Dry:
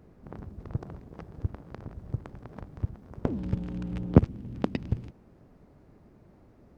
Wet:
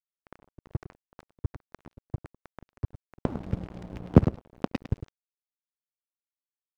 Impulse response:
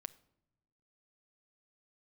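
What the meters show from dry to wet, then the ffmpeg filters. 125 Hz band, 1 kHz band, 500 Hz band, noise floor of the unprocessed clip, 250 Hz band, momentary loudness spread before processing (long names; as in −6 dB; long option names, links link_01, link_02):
0.0 dB, +2.0 dB, +1.0 dB, −58 dBFS, +0.5 dB, 22 LU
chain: -filter_complex "[0:a]aecho=1:1:104|208:0.316|0.0474,asplit=2[link_01][link_02];[1:a]atrim=start_sample=2205,afade=type=out:start_time=0.38:duration=0.01,atrim=end_sample=17199,asetrate=52920,aresample=44100[link_03];[link_02][link_03]afir=irnorm=-1:irlink=0,volume=1.5dB[link_04];[link_01][link_04]amix=inputs=2:normalize=0,aeval=exprs='sgn(val(0))*max(abs(val(0))-0.0282,0)':channel_layout=same,volume=-2.5dB"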